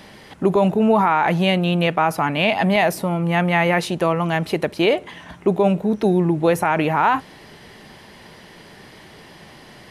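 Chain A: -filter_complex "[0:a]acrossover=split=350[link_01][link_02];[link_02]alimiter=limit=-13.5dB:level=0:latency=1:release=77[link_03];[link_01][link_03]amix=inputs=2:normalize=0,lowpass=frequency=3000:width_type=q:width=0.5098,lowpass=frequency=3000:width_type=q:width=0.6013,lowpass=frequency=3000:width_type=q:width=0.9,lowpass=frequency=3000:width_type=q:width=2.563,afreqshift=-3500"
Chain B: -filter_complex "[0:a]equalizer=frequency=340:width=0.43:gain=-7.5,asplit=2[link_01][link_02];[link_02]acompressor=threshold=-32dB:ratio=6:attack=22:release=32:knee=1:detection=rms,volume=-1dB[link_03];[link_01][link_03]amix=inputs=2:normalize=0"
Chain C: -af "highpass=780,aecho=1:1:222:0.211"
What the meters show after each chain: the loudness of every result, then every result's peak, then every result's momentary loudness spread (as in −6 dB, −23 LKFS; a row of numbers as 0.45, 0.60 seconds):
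−17.0, −21.0, −23.5 LKFS; −7.0, −6.0, −6.5 dBFS; 6, 21, 11 LU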